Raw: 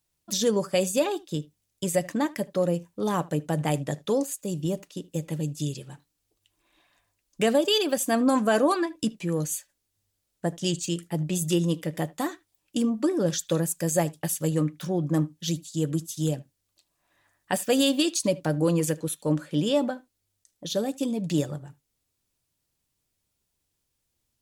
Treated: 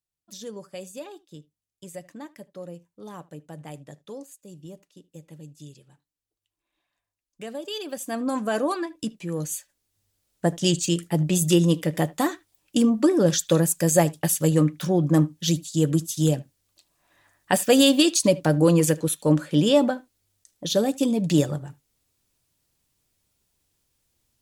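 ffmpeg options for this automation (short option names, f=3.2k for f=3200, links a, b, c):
-af "volume=5.5dB,afade=t=in:st=7.5:d=1.07:silence=0.281838,afade=t=in:st=9.27:d=1.18:silence=0.375837"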